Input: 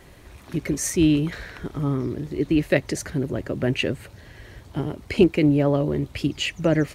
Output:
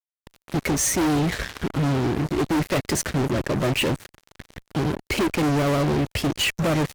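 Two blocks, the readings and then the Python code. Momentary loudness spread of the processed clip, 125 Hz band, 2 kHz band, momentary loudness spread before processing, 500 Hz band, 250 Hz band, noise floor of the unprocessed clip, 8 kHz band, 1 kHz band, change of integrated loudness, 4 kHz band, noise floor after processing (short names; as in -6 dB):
6 LU, +1.0 dB, +3.0 dB, 12 LU, -1.0 dB, -1.5 dB, -48 dBFS, +5.5 dB, +9.0 dB, 0.0 dB, +4.0 dB, under -85 dBFS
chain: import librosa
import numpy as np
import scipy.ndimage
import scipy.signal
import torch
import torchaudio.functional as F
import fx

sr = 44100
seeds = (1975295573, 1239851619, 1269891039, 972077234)

y = fx.spec_quant(x, sr, step_db=15)
y = fx.fuzz(y, sr, gain_db=34.0, gate_db=-37.0)
y = F.gain(torch.from_numpy(y), -6.0).numpy()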